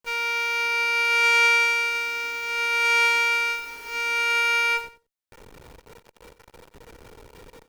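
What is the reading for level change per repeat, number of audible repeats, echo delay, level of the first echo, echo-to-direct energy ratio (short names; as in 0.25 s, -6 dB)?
-15.0 dB, 2, 91 ms, -14.5 dB, -14.5 dB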